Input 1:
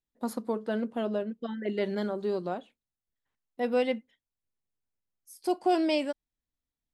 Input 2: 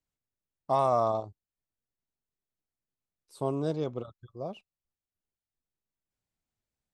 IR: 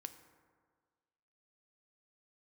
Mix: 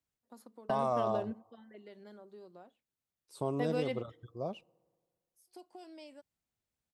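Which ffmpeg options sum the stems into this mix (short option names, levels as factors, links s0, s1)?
-filter_complex "[0:a]adynamicequalizer=threshold=0.00316:dfrequency=3100:dqfactor=0.92:tfrequency=3100:tqfactor=0.92:attack=5:release=100:ratio=0.375:range=3:mode=cutabove:tftype=bell,acrossover=split=140|3000[s0][s1][s2];[s1]acompressor=threshold=0.0316:ratio=6[s3];[s0][s3][s2]amix=inputs=3:normalize=0,lowshelf=f=160:g=-8.5,volume=1.19,asplit=2[s4][s5];[s5]volume=0.112[s6];[1:a]highpass=45,volume=0.841,asplit=3[s7][s8][s9];[s8]volume=0.188[s10];[s9]apad=whole_len=305665[s11];[s4][s11]sidechaingate=range=0.00112:threshold=0.00251:ratio=16:detection=peak[s12];[2:a]atrim=start_sample=2205[s13];[s10][s13]afir=irnorm=-1:irlink=0[s14];[s6]aecho=0:1:89:1[s15];[s12][s7][s14][s15]amix=inputs=4:normalize=0,alimiter=limit=0.0841:level=0:latency=1:release=258"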